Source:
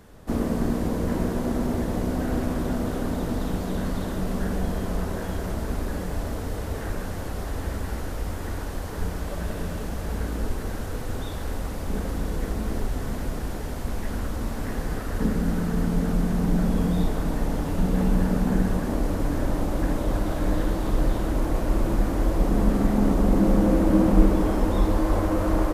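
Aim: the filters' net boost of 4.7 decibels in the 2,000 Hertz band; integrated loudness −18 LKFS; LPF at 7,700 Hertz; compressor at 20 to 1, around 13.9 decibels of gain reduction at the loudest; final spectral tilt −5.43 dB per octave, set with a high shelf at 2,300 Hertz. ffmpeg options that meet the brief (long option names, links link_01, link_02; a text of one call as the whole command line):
ffmpeg -i in.wav -af "lowpass=7700,equalizer=frequency=2000:width_type=o:gain=9,highshelf=frequency=2300:gain=-6,acompressor=threshold=-23dB:ratio=20,volume=13dB" out.wav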